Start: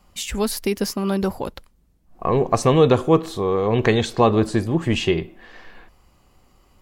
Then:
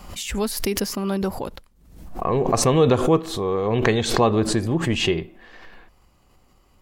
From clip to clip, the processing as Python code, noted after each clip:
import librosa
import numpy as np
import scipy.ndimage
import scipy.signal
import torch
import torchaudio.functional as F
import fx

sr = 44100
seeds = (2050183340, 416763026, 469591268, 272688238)

y = fx.pre_swell(x, sr, db_per_s=69.0)
y = F.gain(torch.from_numpy(y), -2.5).numpy()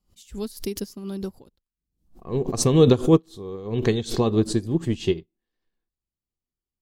y = fx.band_shelf(x, sr, hz=1200.0, db=-9.5, octaves=2.6)
y = fx.upward_expand(y, sr, threshold_db=-42.0, expansion=2.5)
y = F.gain(torch.from_numpy(y), 5.5).numpy()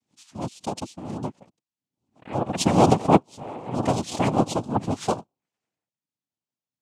y = fx.noise_vocoder(x, sr, seeds[0], bands=4)
y = fx.wow_flutter(y, sr, seeds[1], rate_hz=2.1, depth_cents=29.0)
y = F.gain(torch.from_numpy(y), -1.0).numpy()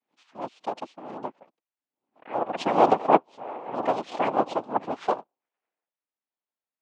y = np.where(x < 0.0, 10.0 ** (-3.0 / 20.0) * x, x)
y = fx.bandpass_edges(y, sr, low_hz=460.0, high_hz=2200.0)
y = F.gain(torch.from_numpy(y), 3.0).numpy()